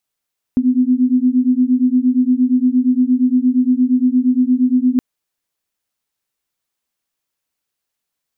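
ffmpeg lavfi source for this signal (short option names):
-f lavfi -i "aevalsrc='0.2*(sin(2*PI*248*t)+sin(2*PI*256.6*t))':d=4.42:s=44100"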